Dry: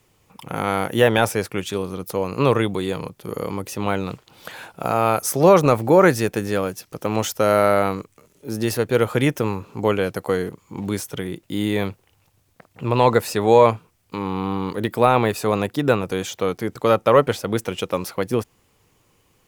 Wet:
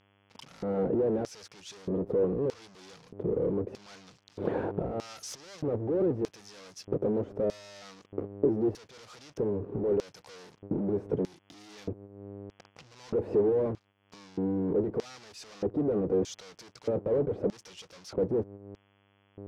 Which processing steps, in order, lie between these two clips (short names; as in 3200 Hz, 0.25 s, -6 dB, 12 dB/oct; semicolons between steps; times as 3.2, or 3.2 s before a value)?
fuzz box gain 40 dB, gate -48 dBFS; buzz 100 Hz, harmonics 34, -34 dBFS -5 dB/oct; gate -30 dBFS, range -9 dB; tilt -4.5 dB/oct; compressor 8:1, threshold -19 dBFS, peak gain reduction 20 dB; LFO band-pass square 0.8 Hz 410–5500 Hz; gain +1.5 dB